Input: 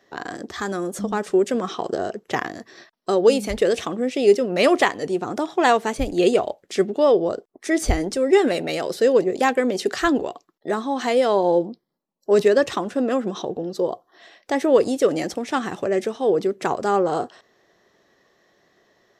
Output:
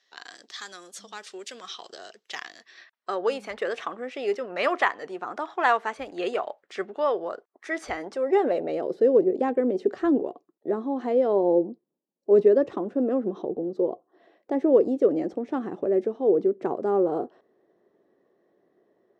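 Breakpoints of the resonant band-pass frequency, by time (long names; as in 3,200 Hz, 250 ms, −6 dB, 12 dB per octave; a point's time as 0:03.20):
resonant band-pass, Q 1.3
0:02.45 4,100 Hz
0:03.21 1,300 Hz
0:07.93 1,300 Hz
0:08.90 350 Hz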